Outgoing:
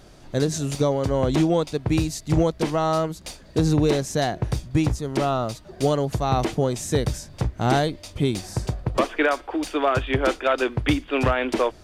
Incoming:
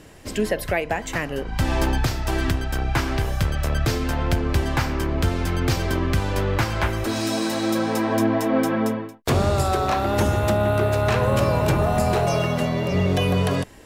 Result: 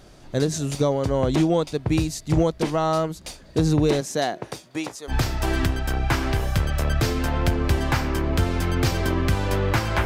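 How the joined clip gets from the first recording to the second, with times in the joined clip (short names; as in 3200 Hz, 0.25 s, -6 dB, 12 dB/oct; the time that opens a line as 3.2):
outgoing
4–5.15 HPF 180 Hz -> 680 Hz
5.11 switch to incoming from 1.96 s, crossfade 0.08 s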